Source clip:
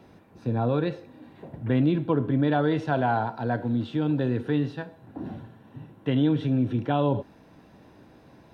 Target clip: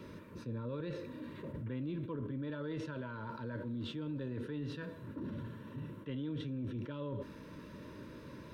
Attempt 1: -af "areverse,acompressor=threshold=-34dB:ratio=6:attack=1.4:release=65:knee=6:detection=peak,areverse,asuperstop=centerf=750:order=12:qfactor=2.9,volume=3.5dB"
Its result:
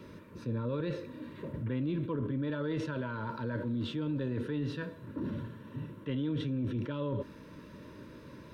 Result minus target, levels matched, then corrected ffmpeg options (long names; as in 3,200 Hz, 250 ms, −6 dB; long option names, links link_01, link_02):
downward compressor: peak gain reduction −6.5 dB
-af "areverse,acompressor=threshold=-41.5dB:ratio=6:attack=1.4:release=65:knee=6:detection=peak,areverse,asuperstop=centerf=750:order=12:qfactor=2.9,volume=3.5dB"